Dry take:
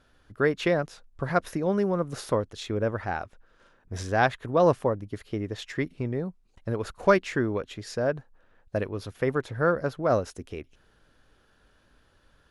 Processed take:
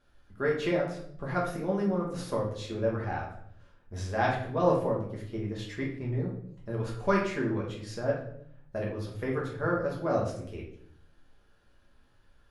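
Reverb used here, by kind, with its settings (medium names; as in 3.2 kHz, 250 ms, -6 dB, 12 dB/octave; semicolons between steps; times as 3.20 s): simulated room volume 110 m³, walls mixed, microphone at 1.3 m; trim -9.5 dB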